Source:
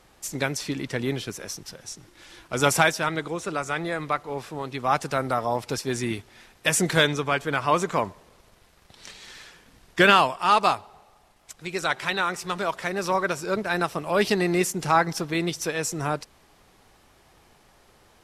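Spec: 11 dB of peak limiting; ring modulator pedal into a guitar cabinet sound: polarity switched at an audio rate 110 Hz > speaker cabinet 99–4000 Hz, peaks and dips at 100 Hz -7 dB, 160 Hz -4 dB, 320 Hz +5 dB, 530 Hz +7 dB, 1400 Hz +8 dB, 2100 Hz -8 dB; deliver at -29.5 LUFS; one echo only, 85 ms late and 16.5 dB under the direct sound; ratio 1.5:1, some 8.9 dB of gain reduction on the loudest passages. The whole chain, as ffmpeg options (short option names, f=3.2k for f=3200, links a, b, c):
-af "acompressor=threshold=-38dB:ratio=1.5,alimiter=level_in=0.5dB:limit=-24dB:level=0:latency=1,volume=-0.5dB,aecho=1:1:85:0.15,aeval=exprs='val(0)*sgn(sin(2*PI*110*n/s))':c=same,highpass=99,equalizer=f=100:t=q:w=4:g=-7,equalizer=f=160:t=q:w=4:g=-4,equalizer=f=320:t=q:w=4:g=5,equalizer=f=530:t=q:w=4:g=7,equalizer=f=1.4k:t=q:w=4:g=8,equalizer=f=2.1k:t=q:w=4:g=-8,lowpass=f=4k:w=0.5412,lowpass=f=4k:w=1.3066,volume=5dB"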